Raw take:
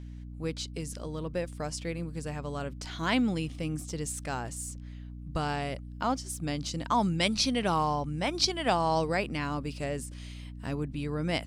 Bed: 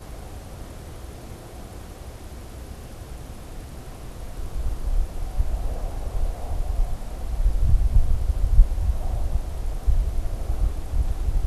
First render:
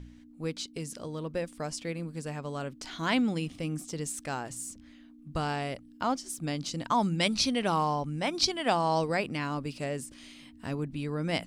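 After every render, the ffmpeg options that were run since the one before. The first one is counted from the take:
-af "bandreject=f=60:t=h:w=4,bandreject=f=120:t=h:w=4,bandreject=f=180:t=h:w=4"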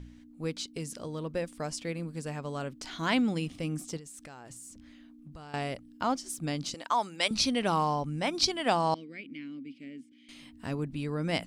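-filter_complex "[0:a]asettb=1/sr,asplit=3[s0][s1][s2];[s0]atrim=end=3.974[s3];[s1]atrim=start=3.97:end=5.54,asetpts=PTS-STARTPTS,afade=t=in:d=0.004:c=qsin,afade=t=out:st=1.566:d=0.004:c=qsin,acompressor=threshold=0.00708:ratio=12:attack=3.2:release=140:knee=1:detection=peak[s4];[s2]atrim=start=5.536[s5];[s3][s4]acrossfade=d=0.004:c1=hsin:c2=qsin[s6];[s6][s5]acrossfade=d=0.004:c1=qsin:c2=hsin,asettb=1/sr,asplit=3[s7][s8][s9];[s7]atrim=end=6.744[s10];[s8]atrim=start=6.74:end=7.31,asetpts=PTS-STARTPTS,afade=t=in:d=0.004:c=qsin,afade=t=out:st=0.566:d=0.004:c=qsin,highpass=520[s11];[s9]atrim=start=7.306[s12];[s10][s11]acrossfade=d=0.004:c1=hsin:c2=qsin[s13];[s13][s12]acrossfade=d=0.004:c1=qsin:c2=hsin,asettb=1/sr,asplit=3[s14][s15][s16];[s14]atrim=end=8.944[s17];[s15]atrim=start=8.94:end=10.29,asetpts=PTS-STARTPTS,afade=t=in:d=0.004:c=qsin,afade=t=out:st=1.346:d=0.004:c=qsin,asplit=3[s18][s19][s20];[s18]bandpass=f=270:t=q:w=8,volume=1[s21];[s19]bandpass=f=2290:t=q:w=8,volume=0.501[s22];[s20]bandpass=f=3010:t=q:w=8,volume=0.355[s23];[s21][s22][s23]amix=inputs=3:normalize=0[s24];[s16]atrim=start=10.286[s25];[s17][s24]acrossfade=d=0.004:c1=hsin:c2=qsin[s26];[s26][s25]acrossfade=d=0.004:c1=qsin:c2=hsin"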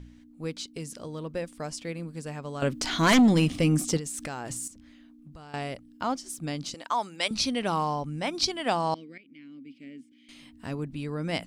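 -filter_complex "[0:a]asettb=1/sr,asplit=3[s0][s1][s2];[s0]atrim=end=2.624[s3];[s1]atrim=start=2.62:end=4.68,asetpts=PTS-STARTPTS,afade=t=in:d=0.004:c=qsin,afade=t=out:st=2.056:d=0.004:c=qsin,aeval=exprs='0.188*sin(PI/2*2.51*val(0)/0.188)':c=same[s4];[s2]atrim=start=4.676[s5];[s3][s4]acrossfade=d=0.004:c1=hsin:c2=qsin[s6];[s6][s5]acrossfade=d=0.004:c1=qsin:c2=hsin,asplit=2[s7][s8];[s7]atrim=end=9.18,asetpts=PTS-STARTPTS,afade=t=out:st=9.176:d=0.004:c=hsin:silence=0.188365[s9];[s8]atrim=start=9.18,asetpts=PTS-STARTPTS,afade=t=in:d=0.7:silence=0.188365[s10];[s9][s10]concat=n=2:v=0:a=1"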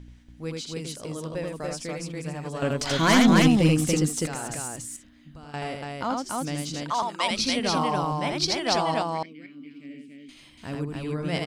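-af "aecho=1:1:81.63|285.7:0.708|0.794"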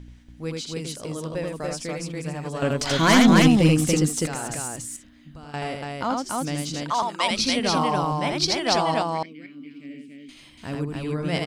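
-af "volume=1.33"

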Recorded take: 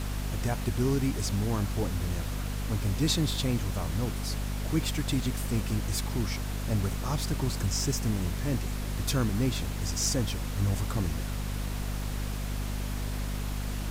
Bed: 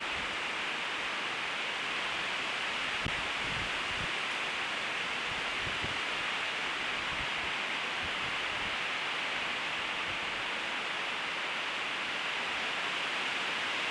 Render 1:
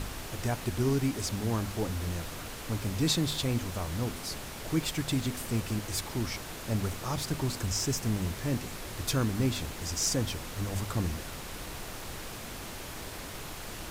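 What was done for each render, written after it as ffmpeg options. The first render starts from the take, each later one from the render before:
-af "bandreject=f=50:t=h:w=4,bandreject=f=100:t=h:w=4,bandreject=f=150:t=h:w=4,bandreject=f=200:t=h:w=4,bandreject=f=250:t=h:w=4"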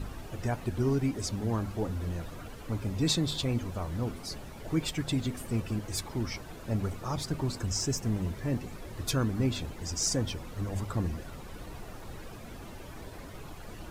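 -af "afftdn=nr=12:nf=-41"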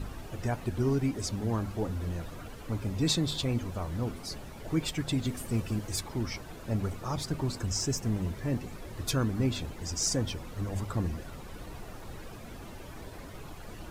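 -filter_complex "[0:a]asettb=1/sr,asplit=3[s0][s1][s2];[s0]atrim=end=5.254[s3];[s1]atrim=start=5.25:end=5.96,asetpts=PTS-STARTPTS,afade=t=in:d=0.004:c=qsin,afade=t=out:st=0.706:d=0.004:c=qsin,bass=f=250:g=1,treble=f=4000:g=3[s4];[s2]atrim=start=5.956[s5];[s3][s4]acrossfade=d=0.004:c1=hsin:c2=qsin[s6];[s6][s5]acrossfade=d=0.004:c1=qsin:c2=hsin"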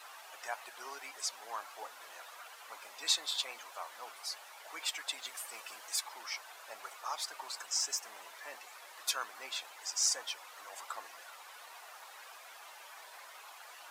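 -af "highpass=f=790:w=0.5412,highpass=f=790:w=1.3066"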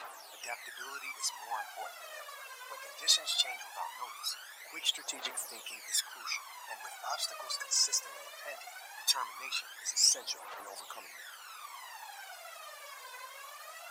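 -af "aphaser=in_gain=1:out_gain=1:delay=2:decay=0.77:speed=0.19:type=triangular"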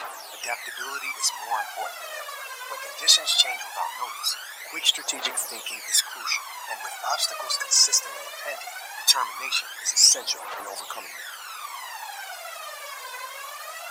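-af "volume=3.55,alimiter=limit=0.708:level=0:latency=1"

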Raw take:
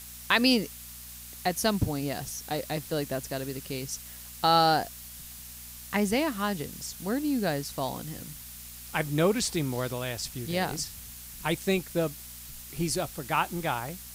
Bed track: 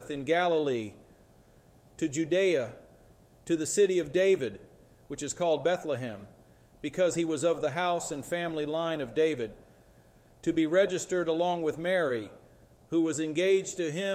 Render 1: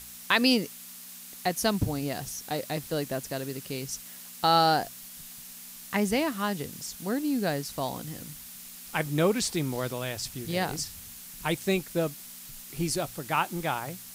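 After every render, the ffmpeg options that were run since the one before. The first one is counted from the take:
-af "bandreject=f=60:t=h:w=4,bandreject=f=120:t=h:w=4"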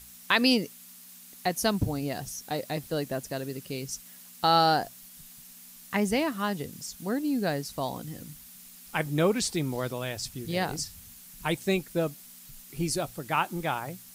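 -af "afftdn=nr=6:nf=-45"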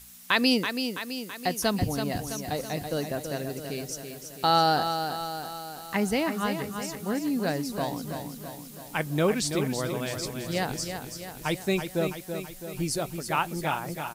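-af "aecho=1:1:330|660|990|1320|1650|1980|2310:0.422|0.24|0.137|0.0781|0.0445|0.0254|0.0145"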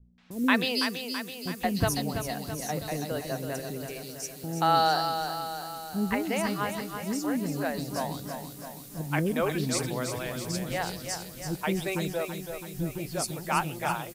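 -filter_complex "[0:a]acrossover=split=400|3500[s0][s1][s2];[s1]adelay=180[s3];[s2]adelay=310[s4];[s0][s3][s4]amix=inputs=3:normalize=0"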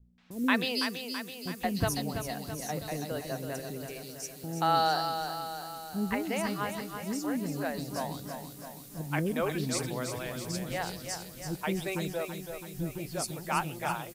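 -af "volume=0.708"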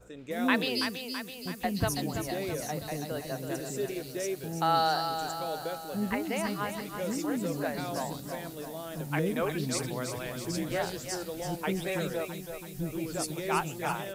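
-filter_complex "[1:a]volume=0.316[s0];[0:a][s0]amix=inputs=2:normalize=0"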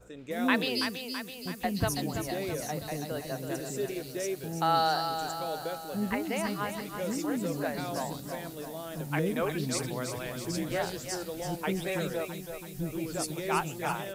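-af anull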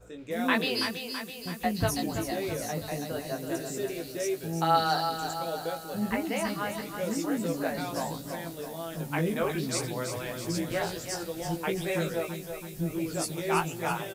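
-filter_complex "[0:a]asplit=2[s0][s1];[s1]adelay=18,volume=0.631[s2];[s0][s2]amix=inputs=2:normalize=0,asplit=2[s3][s4];[s4]adelay=262.4,volume=0.0562,highshelf=f=4000:g=-5.9[s5];[s3][s5]amix=inputs=2:normalize=0"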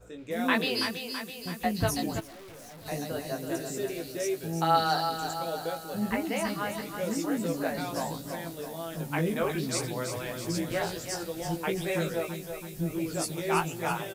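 -filter_complex "[0:a]asplit=3[s0][s1][s2];[s0]afade=t=out:st=2.19:d=0.02[s3];[s1]aeval=exprs='(tanh(200*val(0)+0.2)-tanh(0.2))/200':c=same,afade=t=in:st=2.19:d=0.02,afade=t=out:st=2.85:d=0.02[s4];[s2]afade=t=in:st=2.85:d=0.02[s5];[s3][s4][s5]amix=inputs=3:normalize=0"

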